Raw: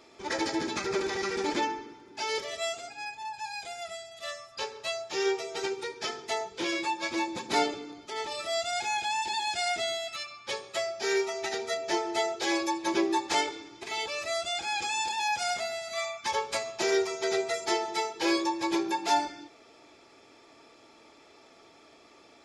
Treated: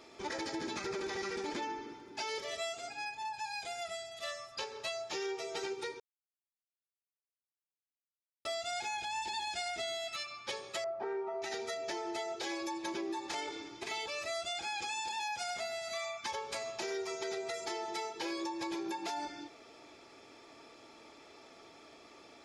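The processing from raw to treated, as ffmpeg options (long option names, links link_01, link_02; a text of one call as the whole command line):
ffmpeg -i in.wav -filter_complex "[0:a]asettb=1/sr,asplit=3[link_01][link_02][link_03];[link_01]atrim=end=8.964[link_04];[link_02]atrim=start=8.96:end=9.85,asetpts=PTS-STARTPTS,afade=type=in:duration=0.004:curve=qsin,afade=type=out:start_time=0.886:duration=0.004:curve=qsin,aeval=exprs='val(0)+0.000891*(sin(2*PI*60*n/s)+sin(2*PI*2*60*n/s)/2+sin(2*PI*3*60*n/s)/3+sin(2*PI*4*60*n/s)/4+sin(2*PI*5*60*n/s)/5)':channel_layout=same[link_05];[link_03]atrim=start=9.846[link_06];[link_04][link_05]acrossfade=duration=0.004:curve1=hsin:curve2=qsin[link_07];[link_07][link_06]acrossfade=duration=0.004:curve1=qsin:curve2=hsin,asettb=1/sr,asplit=3[link_08][link_09][link_10];[link_08]atrim=end=10.844[link_11];[link_09]atrim=start=10.84:end=11.42,asetpts=PTS-STARTPTS,afade=type=in:duration=0.004:curve=qsin,afade=type=out:start_time=0.576:duration=0.004:curve=qsin,lowpass=frequency=1000:width_type=q:width=2[link_12];[link_10]atrim=start=11.416[link_13];[link_11][link_12]acrossfade=duration=0.004:curve1=hsin:curve2=qsin[link_14];[link_14][link_13]acrossfade=duration=0.004:curve1=qsin:curve2=hsin,asplit=3[link_15][link_16][link_17];[link_15]atrim=end=6,asetpts=PTS-STARTPTS,afade=type=out:start_time=5.996:duration=0.004:curve=hsin[link_18];[link_16]atrim=start=6:end=8.45,asetpts=PTS-STARTPTS,volume=0[link_19];[link_17]atrim=start=8.45,asetpts=PTS-STARTPTS,afade=type=in:duration=0.004:curve=hsin[link_20];[link_18][link_19][link_20]concat=n=3:v=0:a=1,bandreject=frequency=7500:width=25,alimiter=limit=-23.5dB:level=0:latency=1:release=76,acompressor=threshold=-37dB:ratio=3" out.wav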